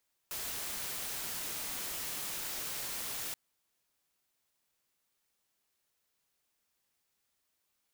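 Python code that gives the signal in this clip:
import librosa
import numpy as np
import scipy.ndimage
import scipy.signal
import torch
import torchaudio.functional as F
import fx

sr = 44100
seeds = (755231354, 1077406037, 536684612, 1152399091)

y = fx.noise_colour(sr, seeds[0], length_s=3.03, colour='white', level_db=-39.0)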